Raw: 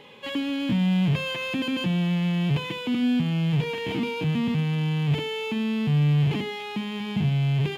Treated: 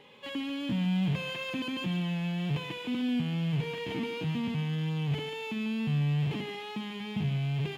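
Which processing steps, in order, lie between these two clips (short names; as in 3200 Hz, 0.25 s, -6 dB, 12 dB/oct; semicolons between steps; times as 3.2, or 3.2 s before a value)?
thinning echo 0.142 s, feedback 58%, high-pass 590 Hz, level -7 dB; wow and flutter 24 cents; gain -7 dB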